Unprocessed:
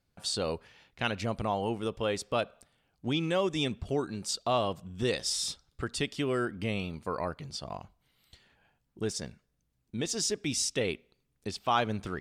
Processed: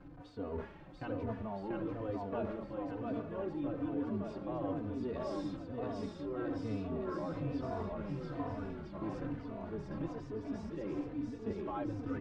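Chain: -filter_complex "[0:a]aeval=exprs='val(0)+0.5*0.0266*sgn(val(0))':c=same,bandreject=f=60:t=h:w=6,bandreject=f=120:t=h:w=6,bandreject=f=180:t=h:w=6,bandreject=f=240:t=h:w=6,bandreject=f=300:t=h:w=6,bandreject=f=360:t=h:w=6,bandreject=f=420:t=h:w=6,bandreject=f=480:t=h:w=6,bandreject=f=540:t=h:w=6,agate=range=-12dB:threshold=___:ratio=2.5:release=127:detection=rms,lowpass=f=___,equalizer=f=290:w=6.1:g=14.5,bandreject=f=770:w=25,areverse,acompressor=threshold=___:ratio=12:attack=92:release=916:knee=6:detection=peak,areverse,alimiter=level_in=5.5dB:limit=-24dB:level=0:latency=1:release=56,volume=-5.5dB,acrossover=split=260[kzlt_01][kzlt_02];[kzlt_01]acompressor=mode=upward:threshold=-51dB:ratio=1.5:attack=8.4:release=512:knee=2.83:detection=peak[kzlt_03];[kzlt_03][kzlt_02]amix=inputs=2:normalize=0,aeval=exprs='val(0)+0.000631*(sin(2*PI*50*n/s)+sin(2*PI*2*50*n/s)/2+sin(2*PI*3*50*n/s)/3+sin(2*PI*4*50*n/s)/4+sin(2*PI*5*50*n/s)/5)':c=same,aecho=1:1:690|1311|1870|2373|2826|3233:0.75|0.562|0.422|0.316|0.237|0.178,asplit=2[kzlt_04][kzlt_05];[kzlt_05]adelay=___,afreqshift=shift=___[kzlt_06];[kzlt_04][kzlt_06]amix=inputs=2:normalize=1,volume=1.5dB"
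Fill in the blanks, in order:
-33dB, 1.1k, -37dB, 3.3, -1.1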